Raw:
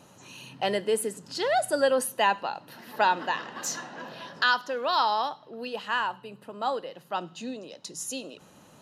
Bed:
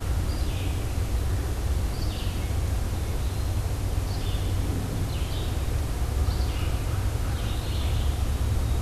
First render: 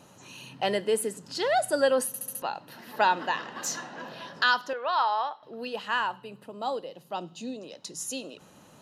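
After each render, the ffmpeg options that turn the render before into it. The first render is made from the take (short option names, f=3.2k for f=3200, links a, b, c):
-filter_complex "[0:a]asettb=1/sr,asplit=3[a][b][c];[a]atrim=end=4.734[d];[b]atrim=start=4.73:end=5.43,asetpts=PTS-STARTPTS,afade=t=in:d=0.004:c=qsin,afade=t=out:st=0.696:d=0.004:c=qsin,highpass=560,lowpass=2.7k[e];[c]atrim=start=5.426[f];[d][e]acrossfade=d=0.004:c1=hsin:c2=qsin[g];[g][f]acrossfade=d=0.004:c1=qsin:c2=hsin,asettb=1/sr,asplit=3[h][i][j];[h]atrim=end=6.464[k];[i]atrim=start=6.46:end=7.61,asetpts=PTS-STARTPTS,afade=t=in:d=0.004:c=qsin,afade=t=out:st=1.146:d=0.004:c=qsin,equalizer=f=1.6k:w=1.2:g=-9.5[l];[j]atrim=start=7.606[m];[k][l]acrossfade=d=0.004:c1=hsin:c2=qsin[n];[n][m]acrossfade=d=0.004:c1=qsin:c2=hsin,asplit=6[o][p][q][r][s][t];[o]atrim=end=2.142[u];[p]atrim=start=2.068:end=2.142[v];[q]atrim=start=2.068:end=2.142[w];[r]atrim=start=2.068:end=2.142[x];[s]atrim=start=2.068:end=2.142[y];[t]atrim=start=2.418[z];[u][v]acrossfade=d=0.004:c1=hsin:c2=hsin[aa];[aa][w]acrossfade=d=0.004:c1=hsin:c2=hsin[ab];[ab][x]acrossfade=d=0.004:c1=hsin:c2=hsin[ac];[ac][y]acrossfade=d=0.004:c1=hsin:c2=hsin[ad];[ad][z]acrossfade=d=0.004:c1=hsin:c2=hsin"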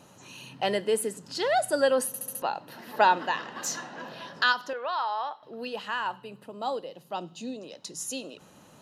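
-filter_complex "[0:a]asettb=1/sr,asplit=3[a][b][c];[a]atrim=end=2.034[d];[b]atrim=start=2.03:end=3.18,asetpts=PTS-STARTPTS,afade=t=in:d=0.004:c=qsin,afade=t=out:st=1.146:d=0.004:c=qsin,equalizer=f=520:w=0.54:g=3.5[e];[c]atrim=start=3.176[f];[d][e]acrossfade=d=0.004:c1=hsin:c2=qsin[g];[g][f]acrossfade=d=0.004:c1=qsin:c2=hsin,asettb=1/sr,asplit=3[h][i][j];[h]atrim=end=4.524[k];[i]atrim=start=4.52:end=6.06,asetpts=PTS-STARTPTS,afade=t=in:d=0.004:c=qsin,afade=t=out:st=1.536:d=0.004:c=qsin,acompressor=threshold=-28dB:ratio=2:attack=3.2:release=140:knee=1:detection=peak[l];[j]atrim=start=6.056[m];[k][l]acrossfade=d=0.004:c1=hsin:c2=qsin[n];[n][m]acrossfade=d=0.004:c1=qsin:c2=hsin"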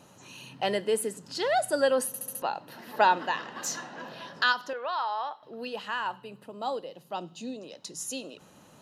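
-af "volume=-1dB"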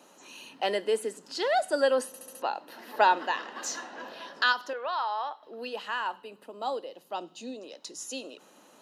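-filter_complex "[0:a]acrossover=split=8100[a][b];[b]acompressor=threshold=-52dB:ratio=4:attack=1:release=60[c];[a][c]amix=inputs=2:normalize=0,highpass=f=250:w=0.5412,highpass=f=250:w=1.3066"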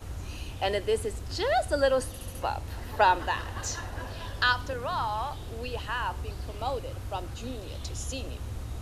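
-filter_complex "[1:a]volume=-11.5dB[a];[0:a][a]amix=inputs=2:normalize=0"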